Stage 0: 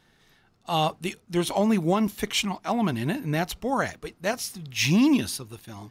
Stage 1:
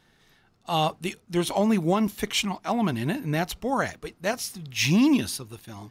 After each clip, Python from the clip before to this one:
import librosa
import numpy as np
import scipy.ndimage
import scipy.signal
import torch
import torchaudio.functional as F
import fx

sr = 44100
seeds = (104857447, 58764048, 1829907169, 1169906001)

y = x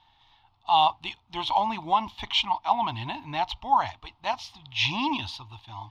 y = fx.curve_eq(x, sr, hz=(110.0, 170.0, 300.0, 470.0, 900.0, 1500.0, 3400.0, 9700.0), db=(0, -18, -10, -23, 13, -11, 6, -29))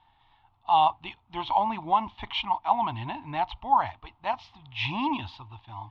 y = scipy.signal.sosfilt(scipy.signal.butter(2, 2300.0, 'lowpass', fs=sr, output='sos'), x)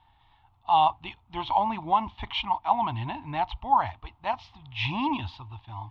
y = fx.peak_eq(x, sr, hz=61.0, db=7.5, octaves=1.9)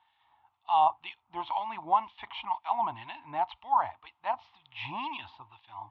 y = fx.filter_lfo_bandpass(x, sr, shape='sine', hz=2.0, low_hz=760.0, high_hz=2800.0, q=0.79)
y = y * 10.0 ** (-1.5 / 20.0)